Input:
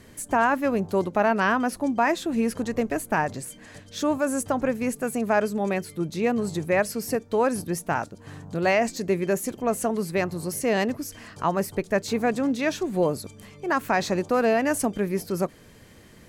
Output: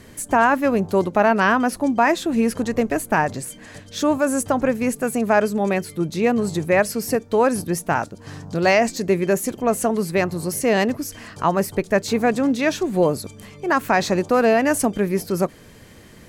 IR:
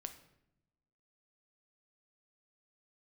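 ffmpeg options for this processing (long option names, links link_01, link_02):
-filter_complex "[0:a]asettb=1/sr,asplit=3[link_01][link_02][link_03];[link_01]atrim=end=8.214[link_04];[link_02]atrim=start=8.21:end=8.81,asetpts=PTS-STARTPTS,afade=type=in:duration=0.004:curve=qsin,afade=type=out:start_time=0.596:duration=0.004:curve=qsin,equalizer=frequency=5200:width=2.6:gain=8.5[link_05];[link_03]atrim=start=8.806[link_06];[link_04][link_05]acrossfade=duration=0.004:curve1=hsin:curve2=qsin[link_07];[link_07][link_06]acrossfade=duration=0.004:curve1=qsin:curve2=hsin,volume=5dB"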